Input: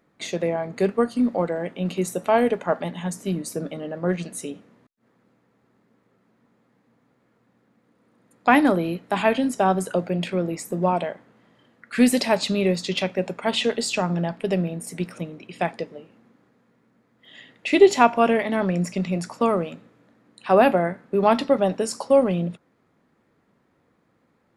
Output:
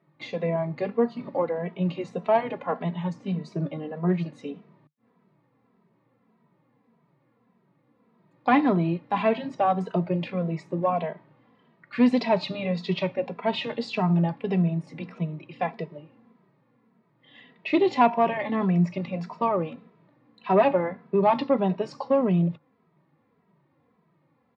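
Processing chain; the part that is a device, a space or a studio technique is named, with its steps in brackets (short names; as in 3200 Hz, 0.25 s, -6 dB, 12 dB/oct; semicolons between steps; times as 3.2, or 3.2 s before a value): barber-pole flanger into a guitar amplifier (endless flanger 2.7 ms -1.7 Hz; soft clip -11 dBFS, distortion -18 dB; speaker cabinet 98–4000 Hz, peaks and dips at 150 Hz +10 dB, 1000 Hz +6 dB, 1500 Hz -6 dB, 3200 Hz -4 dB)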